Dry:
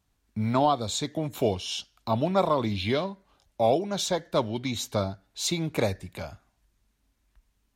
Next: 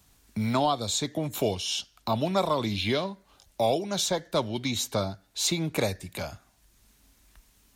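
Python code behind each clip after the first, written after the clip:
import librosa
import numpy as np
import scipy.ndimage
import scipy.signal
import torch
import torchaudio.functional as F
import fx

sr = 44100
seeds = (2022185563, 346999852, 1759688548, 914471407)

y = fx.high_shelf(x, sr, hz=3900.0, db=8.5)
y = fx.band_squash(y, sr, depth_pct=40)
y = F.gain(torch.from_numpy(y), -1.5).numpy()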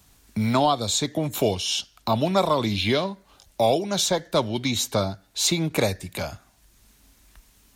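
y = fx.end_taper(x, sr, db_per_s=560.0)
y = F.gain(torch.from_numpy(y), 4.5).numpy()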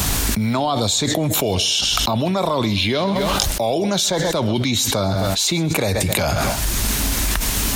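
y = fx.echo_feedback(x, sr, ms=131, feedback_pct=33, wet_db=-22.5)
y = fx.env_flatten(y, sr, amount_pct=100)
y = F.gain(torch.from_numpy(y), -2.5).numpy()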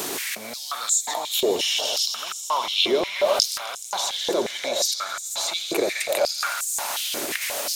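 y = fx.echo_swell(x, sr, ms=85, loudest=5, wet_db=-15.0)
y = fx.filter_held_highpass(y, sr, hz=5.6, low_hz=380.0, high_hz=7400.0)
y = F.gain(torch.from_numpy(y), -8.0).numpy()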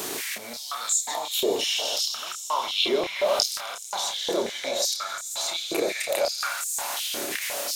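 y = fx.doubler(x, sr, ms=30.0, db=-5.5)
y = F.gain(torch.from_numpy(y), -3.5).numpy()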